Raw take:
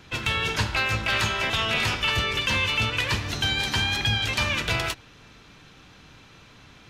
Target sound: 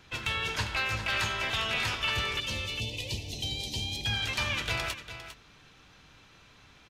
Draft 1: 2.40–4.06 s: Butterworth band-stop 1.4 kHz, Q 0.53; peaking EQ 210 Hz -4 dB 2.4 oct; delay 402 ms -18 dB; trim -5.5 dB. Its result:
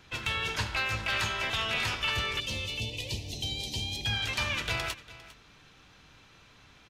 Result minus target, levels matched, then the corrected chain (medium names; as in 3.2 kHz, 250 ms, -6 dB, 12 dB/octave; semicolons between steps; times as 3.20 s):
echo-to-direct -6.5 dB
2.40–4.06 s: Butterworth band-stop 1.4 kHz, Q 0.53; peaking EQ 210 Hz -4 dB 2.4 oct; delay 402 ms -11.5 dB; trim -5.5 dB